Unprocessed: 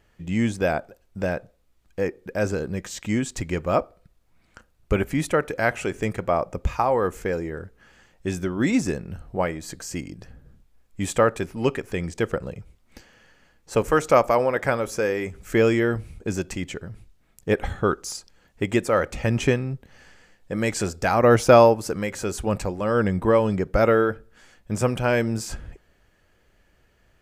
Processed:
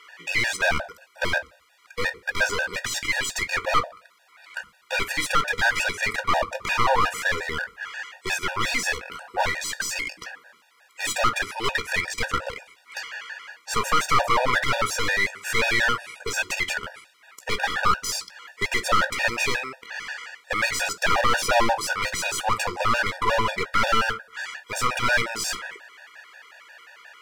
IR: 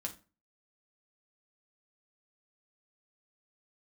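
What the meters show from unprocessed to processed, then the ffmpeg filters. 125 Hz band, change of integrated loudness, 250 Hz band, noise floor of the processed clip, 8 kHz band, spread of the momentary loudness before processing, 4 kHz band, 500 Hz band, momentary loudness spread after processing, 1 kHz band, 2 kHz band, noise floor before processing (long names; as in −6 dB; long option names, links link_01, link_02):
−10.5 dB, −0.5 dB, −13.0 dB, −58 dBFS, +5.5 dB, 14 LU, +10.5 dB, −9.0 dB, 13 LU, +2.5 dB, +7.5 dB, −63 dBFS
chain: -filter_complex "[0:a]highpass=1200,asplit=2[link_01][link_02];[link_02]acompressor=threshold=-40dB:ratio=4,volume=-3dB[link_03];[link_01][link_03]amix=inputs=2:normalize=0,asplit=2[link_04][link_05];[link_05]highpass=frequency=720:poles=1,volume=28dB,asoftclip=type=tanh:threshold=-7dB[link_06];[link_04][link_06]amix=inputs=2:normalize=0,lowpass=frequency=1800:poles=1,volume=-6dB,aeval=exprs='clip(val(0),-1,0.0447)':channel_layout=same,asplit=2[link_07][link_08];[1:a]atrim=start_sample=2205,afade=type=out:start_time=0.31:duration=0.01,atrim=end_sample=14112,adelay=17[link_09];[link_08][link_09]afir=irnorm=-1:irlink=0,volume=-10dB[link_10];[link_07][link_10]amix=inputs=2:normalize=0,afftfilt=real='re*gt(sin(2*PI*5.6*pts/sr)*(1-2*mod(floor(b*sr/1024/480),2)),0)':imag='im*gt(sin(2*PI*5.6*pts/sr)*(1-2*mod(floor(b*sr/1024/480),2)),0)':win_size=1024:overlap=0.75,volume=2dB"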